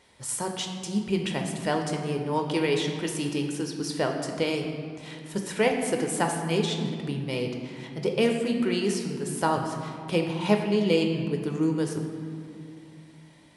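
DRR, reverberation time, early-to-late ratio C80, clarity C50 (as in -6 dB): 2.5 dB, 2.3 s, 6.5 dB, 5.0 dB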